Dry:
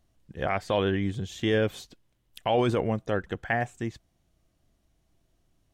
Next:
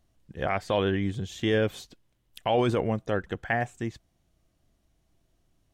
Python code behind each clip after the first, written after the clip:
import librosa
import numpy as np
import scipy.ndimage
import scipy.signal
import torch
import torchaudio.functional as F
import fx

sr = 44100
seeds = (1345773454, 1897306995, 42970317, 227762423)

y = x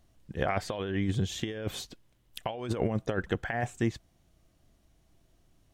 y = fx.over_compress(x, sr, threshold_db=-29.0, ratio=-0.5)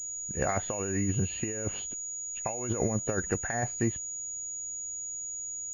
y = fx.freq_compress(x, sr, knee_hz=1900.0, ratio=1.5)
y = fx.pwm(y, sr, carrier_hz=6800.0)